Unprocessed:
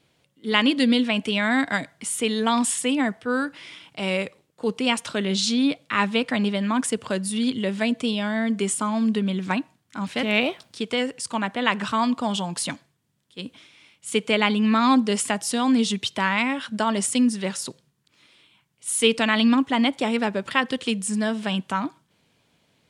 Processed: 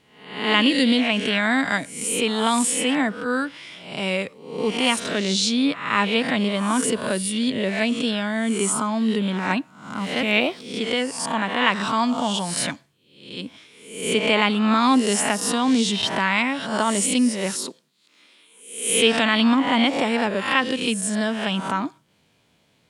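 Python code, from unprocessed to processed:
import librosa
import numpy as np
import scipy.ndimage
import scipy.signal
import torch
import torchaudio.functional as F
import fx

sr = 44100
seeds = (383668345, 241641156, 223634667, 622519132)

y = fx.spec_swells(x, sr, rise_s=0.65)
y = fx.highpass(y, sr, hz=210.0, slope=24, at=(17.55, 18.9))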